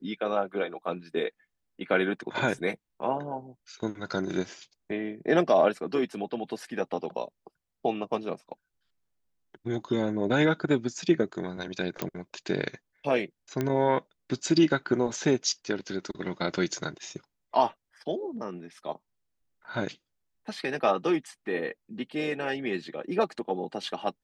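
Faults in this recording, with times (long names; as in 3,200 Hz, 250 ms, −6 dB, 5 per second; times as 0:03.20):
0:12.02: click −14 dBFS
0:13.61: click −15 dBFS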